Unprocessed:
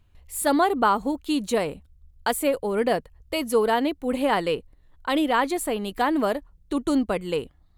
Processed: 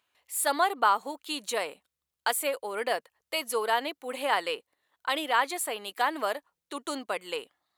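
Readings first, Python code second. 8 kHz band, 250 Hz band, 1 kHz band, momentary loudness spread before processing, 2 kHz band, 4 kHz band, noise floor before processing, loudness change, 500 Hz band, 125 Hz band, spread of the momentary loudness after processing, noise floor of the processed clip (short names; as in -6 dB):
0.0 dB, -16.5 dB, -3.0 dB, 9 LU, -1.0 dB, 0.0 dB, -58 dBFS, -5.0 dB, -8.0 dB, under -20 dB, 12 LU, under -85 dBFS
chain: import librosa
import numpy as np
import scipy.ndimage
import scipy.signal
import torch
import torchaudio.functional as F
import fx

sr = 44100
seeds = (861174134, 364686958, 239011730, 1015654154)

y = scipy.signal.sosfilt(scipy.signal.bessel(2, 890.0, 'highpass', norm='mag', fs=sr, output='sos'), x)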